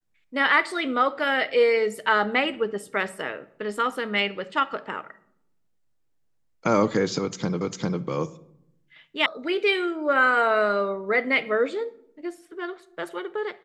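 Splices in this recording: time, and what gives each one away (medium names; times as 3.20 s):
7.61 s: repeat of the last 0.4 s
9.26 s: sound stops dead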